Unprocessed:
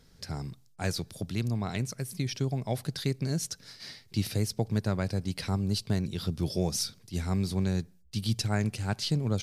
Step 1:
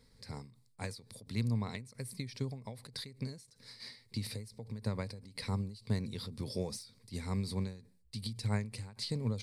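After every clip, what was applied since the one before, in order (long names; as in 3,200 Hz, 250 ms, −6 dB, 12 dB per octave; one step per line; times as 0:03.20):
de-essing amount 50%
EQ curve with evenly spaced ripples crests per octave 0.95, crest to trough 9 dB
every ending faded ahead of time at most 120 dB per second
level −6 dB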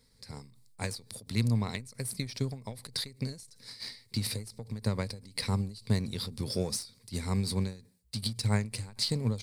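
high-shelf EQ 3,900 Hz +8 dB
automatic gain control gain up to 4.5 dB
in parallel at −5 dB: slack as between gear wheels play −31 dBFS
on the sum: level −3 dB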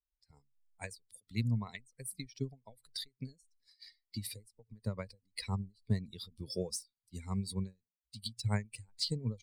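spectral dynamics exaggerated over time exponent 2
level −2 dB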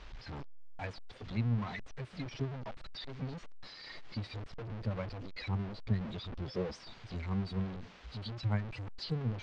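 converter with a step at zero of −34.5 dBFS
Gaussian smoothing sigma 2.3 samples
level −1.5 dB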